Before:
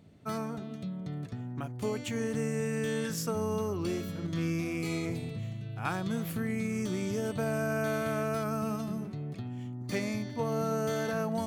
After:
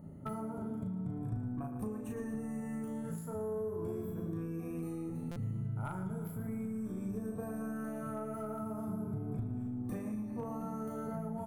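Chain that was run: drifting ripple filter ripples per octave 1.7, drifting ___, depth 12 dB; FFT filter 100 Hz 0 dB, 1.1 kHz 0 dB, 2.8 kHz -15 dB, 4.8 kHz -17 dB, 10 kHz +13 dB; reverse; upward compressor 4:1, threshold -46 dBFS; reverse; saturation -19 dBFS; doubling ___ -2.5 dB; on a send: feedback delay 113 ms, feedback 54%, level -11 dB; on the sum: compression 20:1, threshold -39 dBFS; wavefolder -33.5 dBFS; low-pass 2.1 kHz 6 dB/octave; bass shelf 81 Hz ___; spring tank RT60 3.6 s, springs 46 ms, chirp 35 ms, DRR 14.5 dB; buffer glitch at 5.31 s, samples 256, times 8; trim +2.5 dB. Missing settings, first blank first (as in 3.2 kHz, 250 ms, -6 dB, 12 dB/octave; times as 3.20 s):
+0.37 Hz, 37 ms, +11.5 dB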